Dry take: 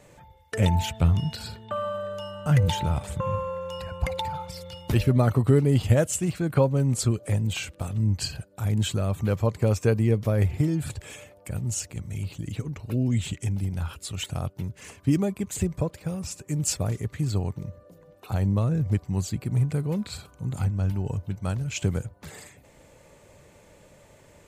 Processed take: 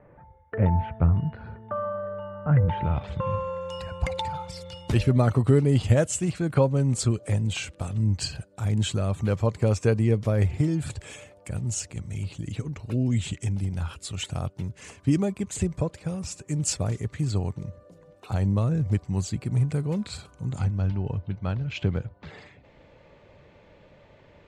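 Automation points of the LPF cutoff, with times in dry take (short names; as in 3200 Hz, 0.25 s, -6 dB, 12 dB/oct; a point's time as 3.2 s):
LPF 24 dB/oct
2.66 s 1700 Hz
2.99 s 3600 Hz
3.71 s 9600 Hz
20.42 s 9600 Hz
21.03 s 4100 Hz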